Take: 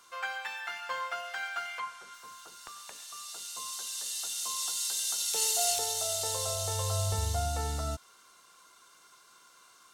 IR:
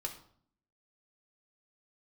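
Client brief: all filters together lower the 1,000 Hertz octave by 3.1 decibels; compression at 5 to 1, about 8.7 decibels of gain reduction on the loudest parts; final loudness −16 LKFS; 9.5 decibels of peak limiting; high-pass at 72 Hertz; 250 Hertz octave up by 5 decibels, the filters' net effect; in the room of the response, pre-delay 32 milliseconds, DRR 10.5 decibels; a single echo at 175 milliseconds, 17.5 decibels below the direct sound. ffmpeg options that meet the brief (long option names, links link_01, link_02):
-filter_complex "[0:a]highpass=72,equalizer=frequency=250:width_type=o:gain=7,equalizer=frequency=1000:width_type=o:gain=-5,acompressor=threshold=-35dB:ratio=5,alimiter=level_in=10.5dB:limit=-24dB:level=0:latency=1,volume=-10.5dB,aecho=1:1:175:0.133,asplit=2[link_01][link_02];[1:a]atrim=start_sample=2205,adelay=32[link_03];[link_02][link_03]afir=irnorm=-1:irlink=0,volume=-10.5dB[link_04];[link_01][link_04]amix=inputs=2:normalize=0,volume=26dB"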